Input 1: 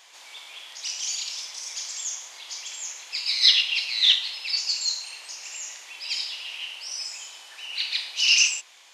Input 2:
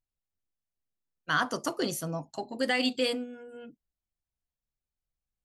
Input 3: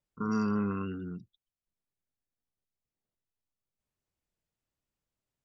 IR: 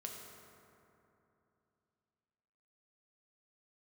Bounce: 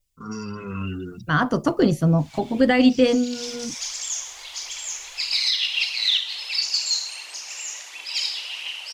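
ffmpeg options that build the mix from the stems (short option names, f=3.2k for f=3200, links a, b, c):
-filter_complex "[0:a]adelay=2050,volume=-10dB[a];[1:a]aemphasis=mode=reproduction:type=riaa,volume=-4.5dB,asplit=2[b][c];[2:a]aexciter=amount=4.7:drive=3.5:freq=2.2k,asplit=2[d][e];[e]adelay=6.8,afreqshift=-2.4[f];[d][f]amix=inputs=2:normalize=1,volume=2dB[g];[c]apad=whole_len=484326[h];[a][h]sidechaincompress=threshold=-43dB:ratio=8:attack=16:release=235[i];[i][g]amix=inputs=2:normalize=0,aphaser=in_gain=1:out_gain=1:delay=2.8:decay=0.34:speed=1.5:type=triangular,alimiter=limit=-24dB:level=0:latency=1:release=281,volume=0dB[j];[b][j]amix=inputs=2:normalize=0,equalizer=f=81:w=1.4:g=4.5,dynaudnorm=f=330:g=7:m=13dB"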